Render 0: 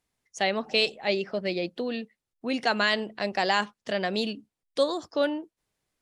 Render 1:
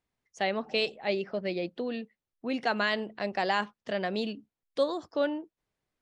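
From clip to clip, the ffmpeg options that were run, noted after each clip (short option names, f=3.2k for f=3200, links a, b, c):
-af "lowpass=f=2.8k:p=1,volume=-2.5dB"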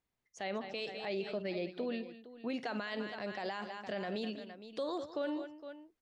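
-af "aecho=1:1:51|202|462:0.112|0.178|0.15,alimiter=level_in=1dB:limit=-24dB:level=0:latency=1:release=53,volume=-1dB,volume=-3.5dB"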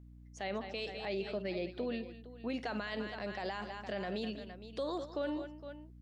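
-af "aeval=exprs='val(0)+0.00224*(sin(2*PI*60*n/s)+sin(2*PI*2*60*n/s)/2+sin(2*PI*3*60*n/s)/3+sin(2*PI*4*60*n/s)/4+sin(2*PI*5*60*n/s)/5)':c=same"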